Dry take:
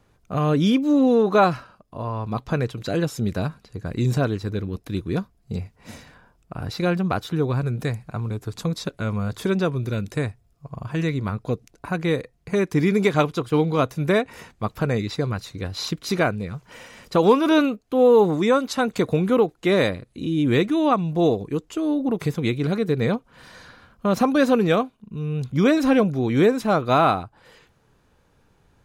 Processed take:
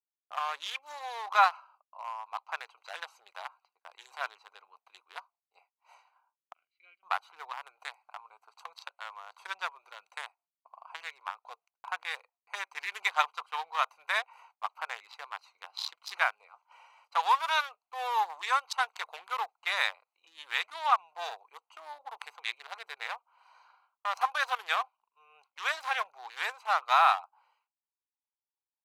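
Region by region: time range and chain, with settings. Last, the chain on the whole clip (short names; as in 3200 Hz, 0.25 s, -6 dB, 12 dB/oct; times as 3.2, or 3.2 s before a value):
6.53–7.03 vowel filter i + high shelf 2200 Hz +3.5 dB
whole clip: Wiener smoothing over 25 samples; elliptic high-pass 850 Hz, stop band 70 dB; expander -58 dBFS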